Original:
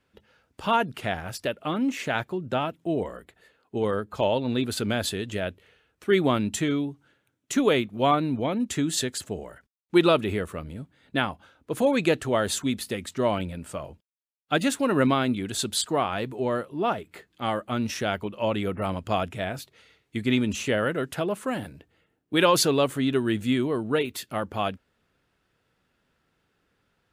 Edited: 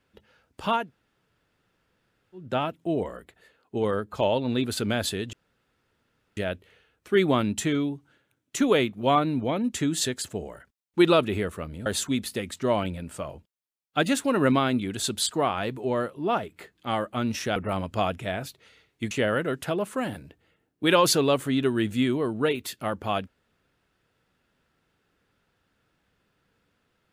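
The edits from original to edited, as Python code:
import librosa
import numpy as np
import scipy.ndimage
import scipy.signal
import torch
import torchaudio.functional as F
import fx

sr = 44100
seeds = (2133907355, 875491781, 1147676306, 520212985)

y = fx.edit(x, sr, fx.room_tone_fill(start_s=0.8, length_s=1.64, crossfade_s=0.24),
    fx.insert_room_tone(at_s=5.33, length_s=1.04),
    fx.cut(start_s=10.82, length_s=1.59),
    fx.cut(start_s=18.11, length_s=0.58),
    fx.cut(start_s=20.24, length_s=0.37), tone=tone)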